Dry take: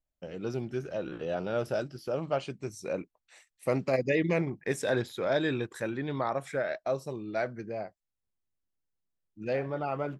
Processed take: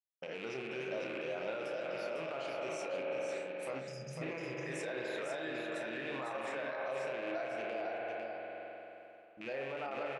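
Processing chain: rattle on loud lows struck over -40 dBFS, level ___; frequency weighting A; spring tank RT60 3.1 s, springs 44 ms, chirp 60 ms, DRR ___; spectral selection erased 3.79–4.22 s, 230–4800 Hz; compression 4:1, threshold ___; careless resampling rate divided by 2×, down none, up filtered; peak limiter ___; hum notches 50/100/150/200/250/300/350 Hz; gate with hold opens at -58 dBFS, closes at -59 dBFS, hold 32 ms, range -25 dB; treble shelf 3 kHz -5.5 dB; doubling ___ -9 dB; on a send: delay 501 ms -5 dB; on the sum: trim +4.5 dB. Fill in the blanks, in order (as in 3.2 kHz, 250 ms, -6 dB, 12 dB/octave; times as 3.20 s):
-32 dBFS, 4 dB, -38 dBFS, -36 dBFS, 31 ms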